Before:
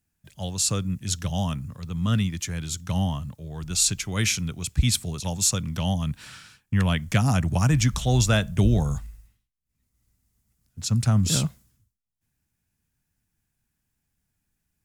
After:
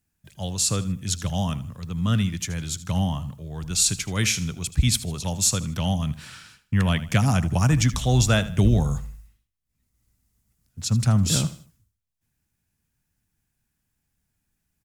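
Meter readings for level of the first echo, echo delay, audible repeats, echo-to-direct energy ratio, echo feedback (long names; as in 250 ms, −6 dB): −16.0 dB, 78 ms, 3, −15.5 dB, 35%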